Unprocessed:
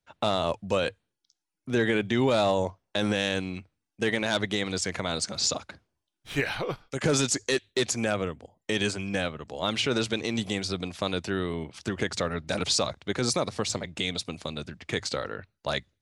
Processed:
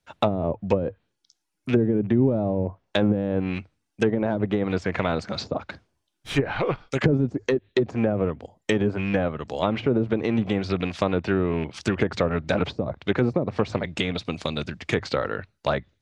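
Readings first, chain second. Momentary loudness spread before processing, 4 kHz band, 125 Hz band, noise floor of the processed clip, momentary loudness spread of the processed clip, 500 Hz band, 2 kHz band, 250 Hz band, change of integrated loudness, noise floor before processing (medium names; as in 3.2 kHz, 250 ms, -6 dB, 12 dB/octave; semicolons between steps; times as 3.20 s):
9 LU, -5.5 dB, +7.5 dB, -78 dBFS, 7 LU, +4.5 dB, -0.5 dB, +6.5 dB, +3.0 dB, -85 dBFS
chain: rattle on loud lows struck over -33 dBFS, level -29 dBFS; low-pass that closes with the level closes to 340 Hz, closed at -21 dBFS; trim +7 dB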